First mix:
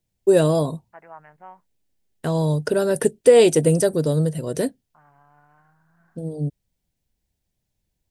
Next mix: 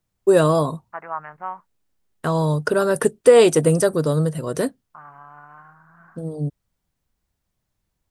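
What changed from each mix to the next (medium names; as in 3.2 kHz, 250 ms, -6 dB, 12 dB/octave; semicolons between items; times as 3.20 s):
second voice +7.0 dB; master: add peaking EQ 1.2 kHz +12 dB 0.69 oct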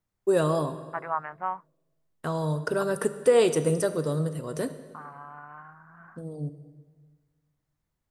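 first voice -9.5 dB; reverb: on, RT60 1.6 s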